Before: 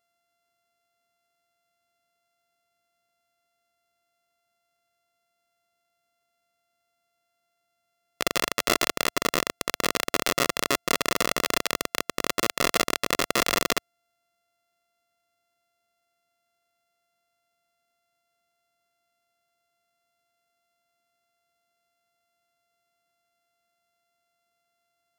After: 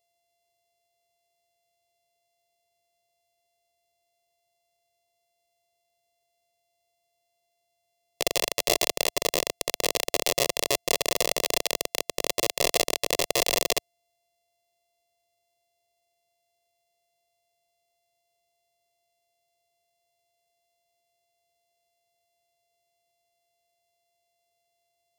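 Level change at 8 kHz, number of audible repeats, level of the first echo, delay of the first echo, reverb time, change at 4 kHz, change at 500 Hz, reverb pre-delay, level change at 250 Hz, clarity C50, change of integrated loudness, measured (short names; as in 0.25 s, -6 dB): +2.0 dB, none, none, none, none, +1.0 dB, +1.5 dB, none, -6.0 dB, none, 0.0 dB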